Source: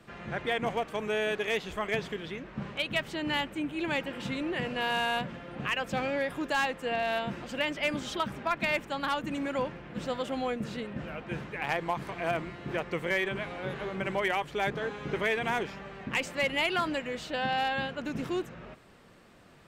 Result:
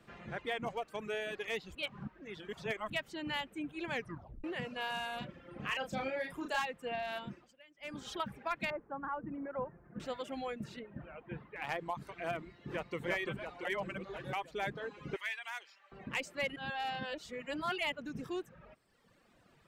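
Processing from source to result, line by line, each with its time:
1.75–2.90 s: reverse
3.92 s: tape stop 0.52 s
5.18–6.62 s: doubling 34 ms -3.5 dB
7.24–8.09 s: dip -21.5 dB, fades 0.32 s
8.70–10.00 s: low-pass 1.5 kHz 24 dB/octave
10.79–11.56 s: distance through air 380 m
12.38–13.02 s: echo throw 340 ms, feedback 70%, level -1.5 dB
13.65–14.33 s: reverse
15.16–15.92 s: high-pass 1.4 kHz
16.56–17.92 s: reverse
whole clip: reverb removal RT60 1.3 s; trim -6.5 dB

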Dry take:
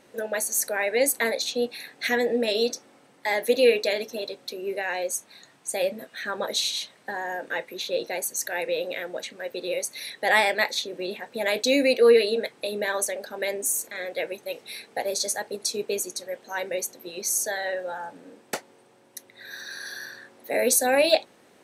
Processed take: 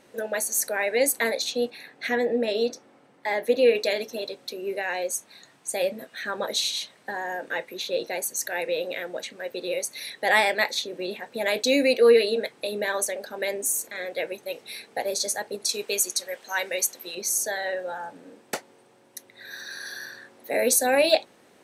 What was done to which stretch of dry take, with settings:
1.70–3.75 s: treble shelf 3.5 kHz -10.5 dB
15.69–17.15 s: tilt shelf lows -7 dB, about 680 Hz

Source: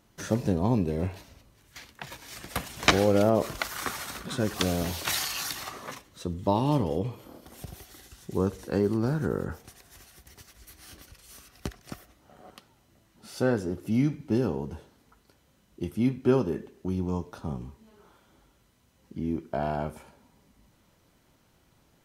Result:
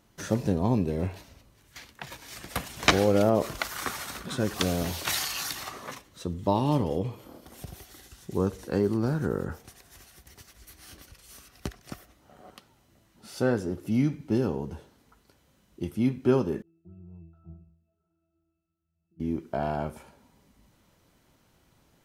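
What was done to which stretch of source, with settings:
16.62–19.20 s: pitch-class resonator E, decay 0.69 s

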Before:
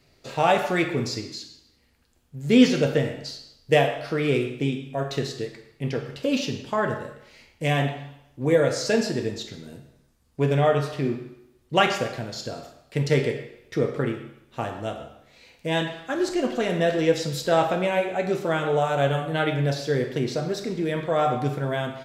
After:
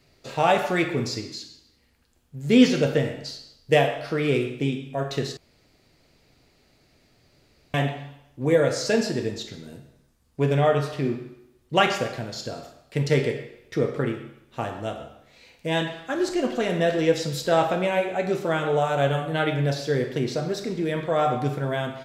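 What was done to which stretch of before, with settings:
5.37–7.74 s: room tone

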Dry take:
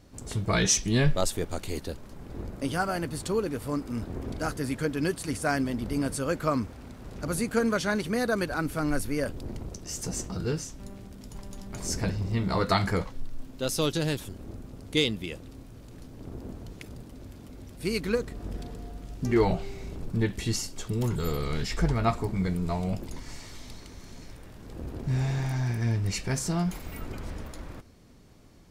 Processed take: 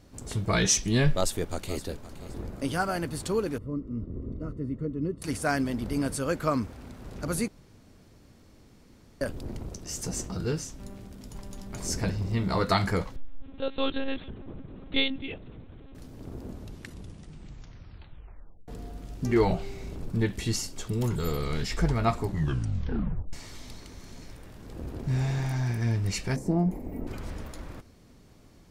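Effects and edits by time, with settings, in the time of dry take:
1.13–1.85 s: echo throw 520 ms, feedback 30%, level -15 dB
3.58–5.22 s: boxcar filter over 55 samples
7.48–9.21 s: room tone
13.16–15.95 s: monotone LPC vocoder at 8 kHz 270 Hz
16.45 s: tape stop 2.23 s
22.23 s: tape stop 1.10 s
26.36–27.07 s: FFT filter 160 Hz 0 dB, 240 Hz +10 dB, 840 Hz 0 dB, 1.4 kHz -18 dB, 2 kHz -10 dB, 3.3 kHz -23 dB, 13 kHz -12 dB

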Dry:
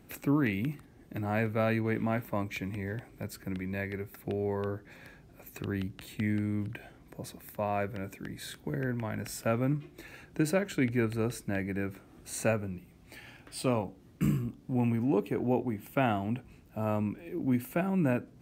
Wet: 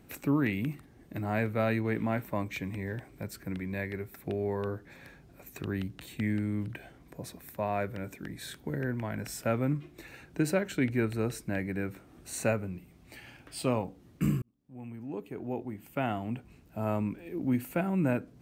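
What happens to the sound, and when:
14.42–16.87 s: fade in

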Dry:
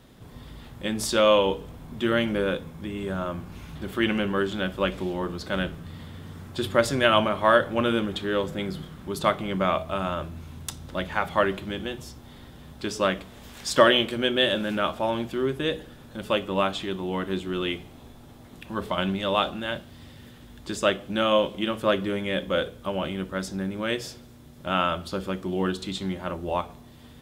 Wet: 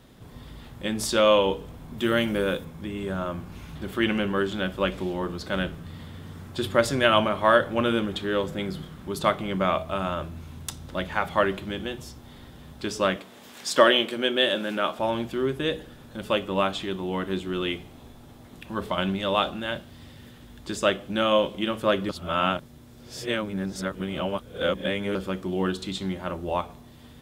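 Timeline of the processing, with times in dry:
1.98–2.65 s: treble shelf 7.8 kHz +11 dB
13.16–14.99 s: high-pass 220 Hz
22.09–25.15 s: reverse

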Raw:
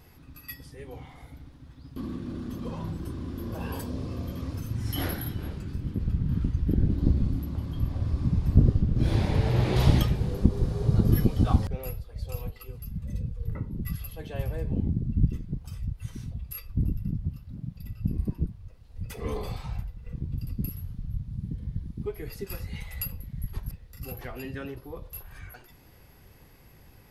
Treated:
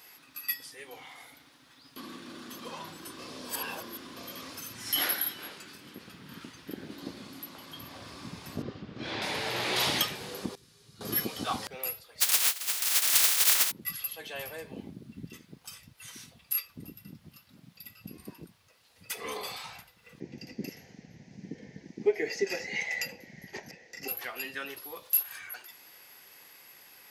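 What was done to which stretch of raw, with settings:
3.19–4.16 s: reverse
5.01–7.71 s: bass shelf 120 Hz -11 dB
8.62–9.22 s: distance through air 170 m
10.55–11.01 s: amplifier tone stack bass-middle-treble 6-0-2
12.20–13.70 s: spectral contrast reduction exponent 0.11
20.20–24.08 s: FFT filter 100 Hz 0 dB, 180 Hz +9 dB, 260 Hz +11 dB, 380 Hz +15 dB, 790 Hz +11 dB, 1.2 kHz -11 dB, 1.9 kHz +11 dB, 3.6 kHz -6 dB, 6.3 kHz +7 dB, 9.5 kHz -22 dB
24.70–25.36 s: treble shelf 2.9 kHz +7.5 dB
whole clip: high-pass 260 Hz 12 dB/octave; tilt shelf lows -9.5 dB, about 800 Hz

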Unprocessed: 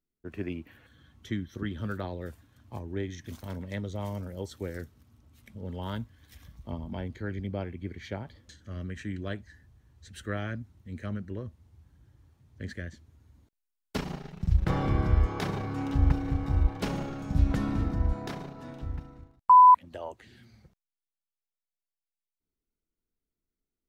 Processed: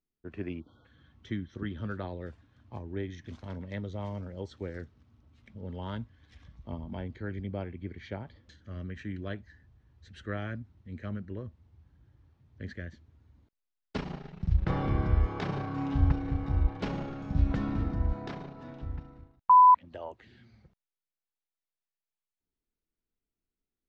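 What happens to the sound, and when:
0.60–0.85 s: spectral selection erased 1.5–3.1 kHz
15.45–16.11 s: flutter echo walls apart 6.1 m, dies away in 0.39 s
whole clip: Bessel low-pass 3.9 kHz, order 4; trim -2 dB

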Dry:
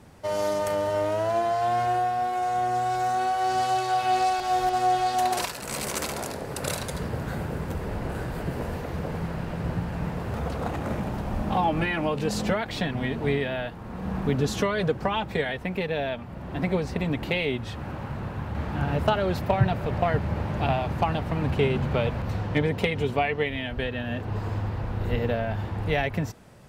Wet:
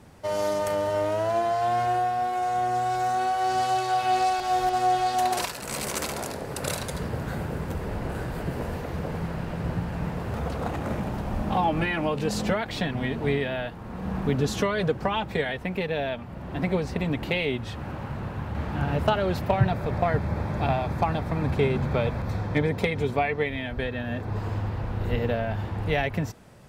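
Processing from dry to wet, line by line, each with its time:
19.68–24.37 s: band-stop 2.9 kHz, Q 5.6

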